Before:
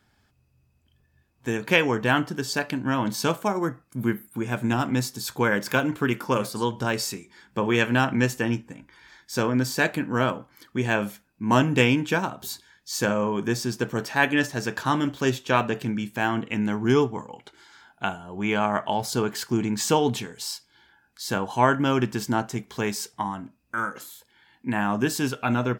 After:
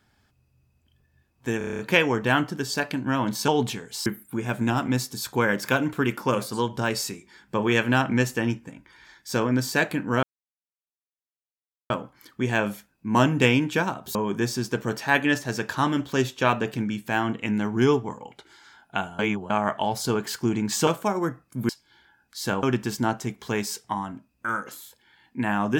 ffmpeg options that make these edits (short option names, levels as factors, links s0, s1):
-filter_complex "[0:a]asplit=17[s0][s1][s2][s3][s4][s5][s6][s7][s8][s9][s10][s11][s12][s13][s14][s15][s16];[s0]atrim=end=1.612[s17];[s1]atrim=start=1.578:end=1.612[s18];[s2]atrim=start=1.578:end=1.612[s19];[s3]atrim=start=1.578:end=1.612[s20];[s4]atrim=start=1.578:end=1.612[s21];[s5]atrim=start=1.578:end=1.612[s22];[s6]atrim=start=1.578:end=1.612[s23];[s7]atrim=start=1.578:end=3.272[s24];[s8]atrim=start=19.948:end=20.532[s25];[s9]atrim=start=4.088:end=10.26,asetpts=PTS-STARTPTS,afade=t=out:st=6.168:d=0.004:c=hsin,apad=pad_dur=1.67[s26];[s10]atrim=start=10.26:end=12.512,asetpts=PTS-STARTPTS,afade=t=in:d=0.004:c=hsin[s27];[s11]atrim=start=13.228:end=18.272[s28];[s12]atrim=start=18.268:end=18.582,asetpts=PTS-STARTPTS,areverse[s29];[s13]atrim=start=18.578:end=19.952[s30];[s14]atrim=start=3.268:end=4.092[s31];[s15]atrim=start=20.528:end=21.472[s32];[s16]atrim=start=21.918[s33];[s17][s18]acrossfade=d=0.004:c1=hsin:c2=hsin[s34];[s34][s19]acrossfade=d=0.004:c1=hsin:c2=hsin[s35];[s35][s20]acrossfade=d=0.004:c1=hsin:c2=hsin[s36];[s36][s21]acrossfade=d=0.004:c1=hsin:c2=hsin[s37];[s37][s22]acrossfade=d=0.004:c1=hsin:c2=hsin[s38];[s38][s23]acrossfade=d=0.004:c1=hsin:c2=hsin[s39];[s39][s24]acrossfade=d=0.004:c1=hsin:c2=hsin[s40];[s40][s25]acrossfade=d=0.004:c1=hsin:c2=hsin[s41];[s26][s27]concat=n=2:v=0:a=1[s42];[s41][s42]acrossfade=d=0.004:c1=hsin:c2=hsin[s43];[s43][s28]acrossfade=d=0.004:c1=hsin:c2=hsin[s44];[s44][s29]acrossfade=d=0.004:c1=hsin:c2=hsin[s45];[s45][s30]acrossfade=d=0.004:c1=hsin:c2=hsin[s46];[s46][s31]acrossfade=d=0.004:c1=hsin:c2=hsin[s47];[s47][s32]acrossfade=d=0.004:c1=hsin:c2=hsin[s48];[s48][s33]acrossfade=d=0.004:c1=hsin:c2=hsin"